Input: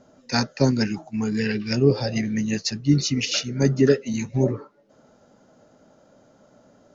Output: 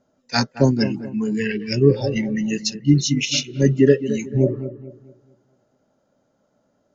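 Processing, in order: spectral noise reduction 15 dB; dark delay 0.219 s, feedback 36%, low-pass 1500 Hz, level -12 dB; gain +3.5 dB

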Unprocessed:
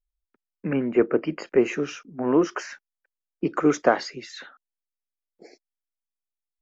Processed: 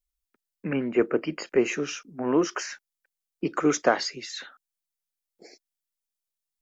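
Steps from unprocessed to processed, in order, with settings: high shelf 2900 Hz +11 dB; gain -3 dB

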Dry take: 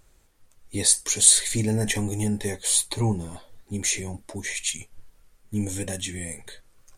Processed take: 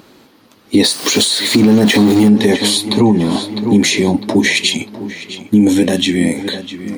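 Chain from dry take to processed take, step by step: 0.84–2.29 zero-crossing step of -27 dBFS; notch 3600 Hz, Q 26; darkening echo 0.652 s, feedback 44%, low-pass 4800 Hz, level -16 dB; compressor 8:1, threshold -26 dBFS, peak gain reduction 16 dB; graphic EQ 1000/4000/8000 Hz +5/+10/-12 dB; 5.73–6.36 AM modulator 85 Hz, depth 30%; HPF 170 Hz 12 dB/oct; bell 260 Hz +14 dB 1.3 oct; maximiser +17 dB; gain -1 dB

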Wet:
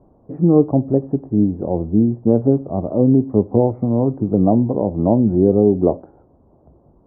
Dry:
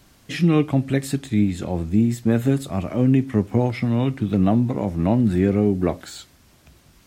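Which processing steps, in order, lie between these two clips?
steep low-pass 960 Hz 36 dB/oct; bell 470 Hz +8.5 dB 1.6 oct

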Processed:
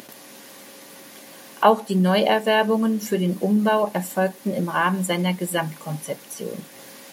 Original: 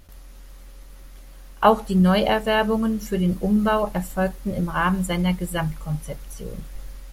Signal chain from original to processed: HPF 200 Hz 24 dB/oct; in parallel at +3 dB: compressor, threshold -29 dBFS, peak gain reduction 18 dB; on the sum: notch 1300 Hz, Q 6.8; upward compressor, threshold -35 dBFS; gain -1 dB

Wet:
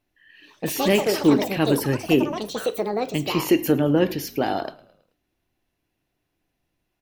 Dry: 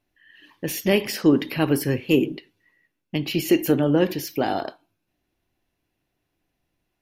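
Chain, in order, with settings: echoes that change speed 0.179 s, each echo +6 st, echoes 3, each echo -6 dB; frequency-shifting echo 0.108 s, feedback 52%, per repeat -37 Hz, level -22.5 dB

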